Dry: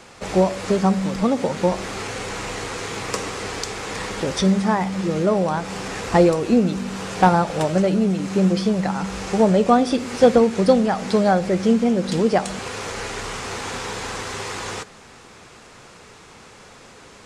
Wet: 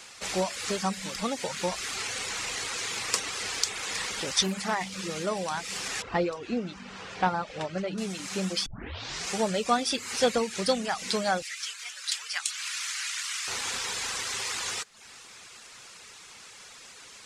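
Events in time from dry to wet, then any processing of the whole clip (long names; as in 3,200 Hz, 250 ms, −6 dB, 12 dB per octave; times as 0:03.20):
0:01.96–0:05.00: highs frequency-modulated by the lows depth 0.29 ms
0:06.02–0:07.98: head-to-tape spacing loss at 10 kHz 25 dB
0:08.66: tape start 0.64 s
0:11.42–0:13.48: high-pass filter 1,300 Hz 24 dB per octave
whole clip: reverb reduction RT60 0.58 s; tilt shelving filter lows −9.5 dB, about 1,300 Hz; level −4.5 dB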